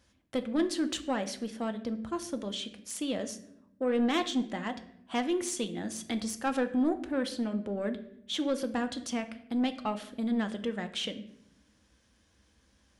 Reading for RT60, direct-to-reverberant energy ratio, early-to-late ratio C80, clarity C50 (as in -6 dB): 0.75 s, 8.0 dB, 16.0 dB, 13.5 dB